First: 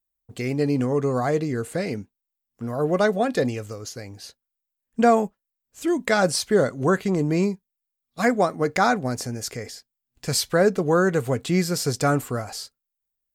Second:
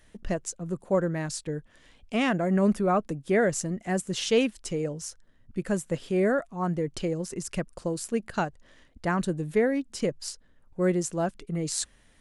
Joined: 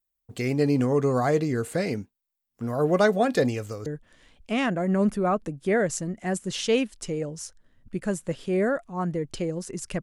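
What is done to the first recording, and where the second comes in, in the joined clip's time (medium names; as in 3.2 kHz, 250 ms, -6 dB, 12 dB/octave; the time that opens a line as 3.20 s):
first
3.86 s: go over to second from 1.49 s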